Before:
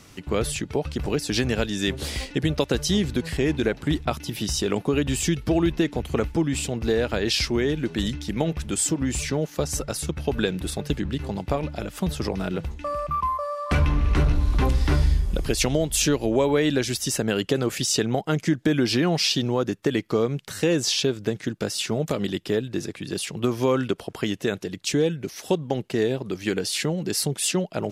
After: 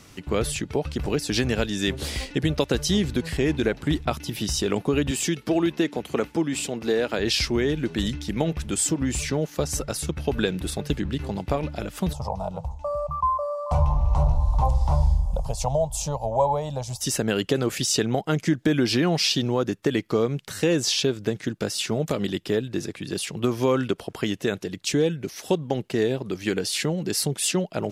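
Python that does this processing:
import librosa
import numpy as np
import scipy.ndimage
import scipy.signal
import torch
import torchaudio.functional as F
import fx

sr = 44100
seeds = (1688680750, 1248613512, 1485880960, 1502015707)

y = fx.highpass(x, sr, hz=200.0, slope=12, at=(5.11, 7.19))
y = fx.curve_eq(y, sr, hz=(140.0, 350.0, 550.0, 920.0, 1600.0, 7200.0, 14000.0), db=(0, -25, 2, 10, -24, -5, -12), at=(12.13, 17.01))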